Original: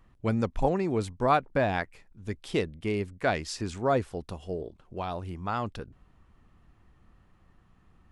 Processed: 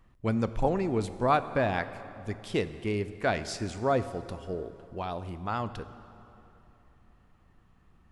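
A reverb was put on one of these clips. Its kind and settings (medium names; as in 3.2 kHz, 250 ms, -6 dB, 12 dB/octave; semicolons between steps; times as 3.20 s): plate-style reverb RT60 3.1 s, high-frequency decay 0.7×, DRR 12 dB; trim -1 dB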